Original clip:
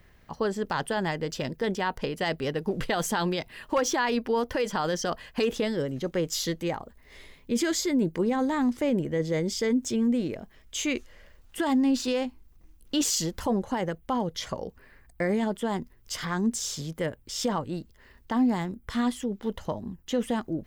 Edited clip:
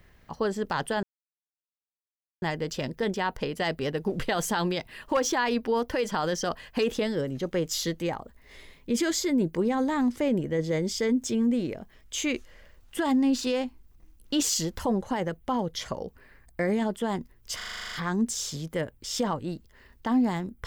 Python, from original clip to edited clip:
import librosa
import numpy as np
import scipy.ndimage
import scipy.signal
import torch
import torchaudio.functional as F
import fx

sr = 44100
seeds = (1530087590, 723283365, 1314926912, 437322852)

y = fx.edit(x, sr, fx.insert_silence(at_s=1.03, length_s=1.39),
    fx.stutter(start_s=16.17, slice_s=0.04, count=10), tone=tone)